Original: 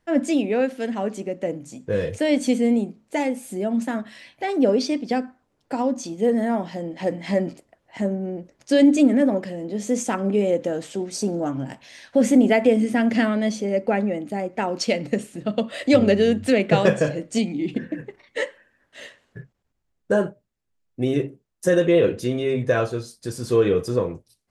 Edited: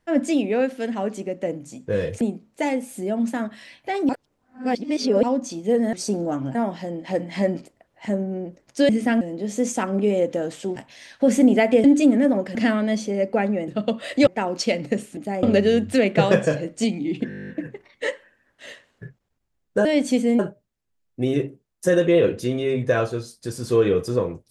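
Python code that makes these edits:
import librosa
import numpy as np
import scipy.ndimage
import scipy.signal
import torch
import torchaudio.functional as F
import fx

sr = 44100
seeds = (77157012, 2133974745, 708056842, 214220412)

y = fx.edit(x, sr, fx.move(start_s=2.21, length_s=0.54, to_s=20.19),
    fx.reverse_span(start_s=4.63, length_s=1.14),
    fx.swap(start_s=8.81, length_s=0.71, other_s=12.77, other_length_s=0.32),
    fx.move(start_s=11.07, length_s=0.62, to_s=6.47),
    fx.swap(start_s=14.22, length_s=0.26, other_s=15.38, other_length_s=0.59),
    fx.stutter(start_s=17.83, slice_s=0.02, count=11), tone=tone)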